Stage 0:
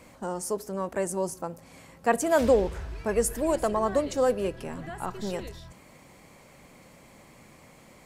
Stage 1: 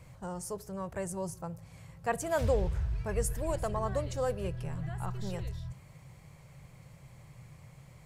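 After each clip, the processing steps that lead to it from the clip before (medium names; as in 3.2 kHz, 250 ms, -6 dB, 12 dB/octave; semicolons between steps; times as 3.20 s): resonant low shelf 180 Hz +10.5 dB, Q 3; trim -7 dB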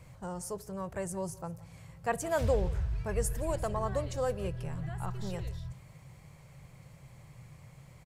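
delay 174 ms -21 dB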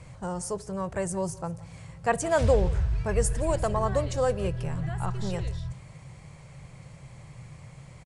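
resampled via 22.05 kHz; trim +6.5 dB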